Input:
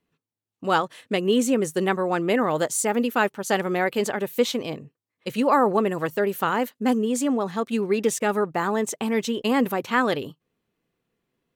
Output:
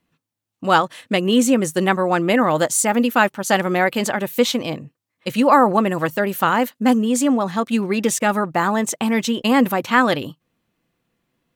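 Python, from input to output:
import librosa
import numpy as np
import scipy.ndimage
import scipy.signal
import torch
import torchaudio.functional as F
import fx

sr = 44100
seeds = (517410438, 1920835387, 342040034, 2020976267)

y = fx.peak_eq(x, sr, hz=420.0, db=-11.0, octaves=0.23)
y = y * librosa.db_to_amplitude(6.5)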